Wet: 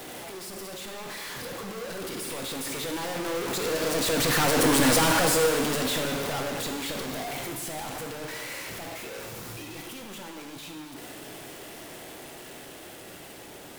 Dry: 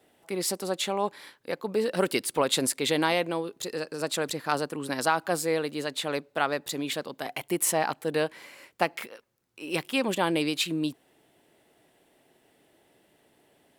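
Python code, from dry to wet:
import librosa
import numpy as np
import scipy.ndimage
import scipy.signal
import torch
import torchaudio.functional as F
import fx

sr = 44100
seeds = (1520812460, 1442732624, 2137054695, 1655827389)

y = np.sign(x) * np.sqrt(np.mean(np.square(x)))
y = fx.doppler_pass(y, sr, speed_mps=7, closest_m=3.5, pass_at_s=4.84)
y = fx.rev_gated(y, sr, seeds[0], gate_ms=500, shape='falling', drr_db=2.5)
y = y * 10.0 ** (8.5 / 20.0)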